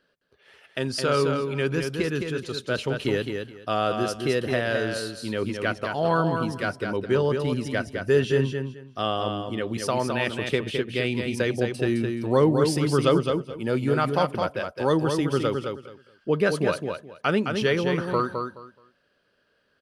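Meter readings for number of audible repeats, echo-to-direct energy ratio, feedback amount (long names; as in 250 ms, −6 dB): 3, −5.5 dB, 20%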